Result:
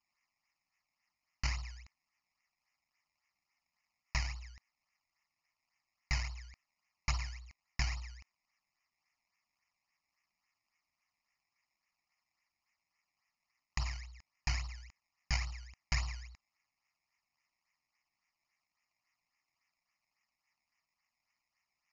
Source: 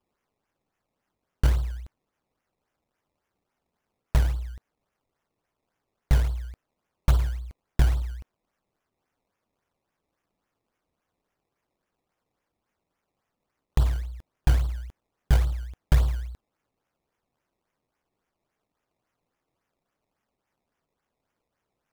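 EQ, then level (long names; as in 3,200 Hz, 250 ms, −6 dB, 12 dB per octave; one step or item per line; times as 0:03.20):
Chebyshev low-pass with heavy ripple 7,000 Hz, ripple 9 dB
tilt shelving filter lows −8.5 dB, about 1,100 Hz
phaser with its sweep stopped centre 2,300 Hz, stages 8
+2.0 dB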